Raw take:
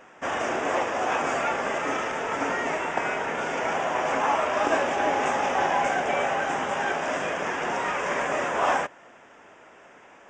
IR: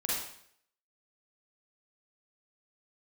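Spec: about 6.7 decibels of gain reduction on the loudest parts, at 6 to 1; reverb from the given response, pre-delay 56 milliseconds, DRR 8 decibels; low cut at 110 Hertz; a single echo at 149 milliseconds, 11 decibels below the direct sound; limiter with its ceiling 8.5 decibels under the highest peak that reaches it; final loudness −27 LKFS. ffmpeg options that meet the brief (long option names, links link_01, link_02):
-filter_complex "[0:a]highpass=110,acompressor=threshold=-26dB:ratio=6,alimiter=limit=-23.5dB:level=0:latency=1,aecho=1:1:149:0.282,asplit=2[link_01][link_02];[1:a]atrim=start_sample=2205,adelay=56[link_03];[link_02][link_03]afir=irnorm=-1:irlink=0,volume=-14dB[link_04];[link_01][link_04]amix=inputs=2:normalize=0,volume=4dB"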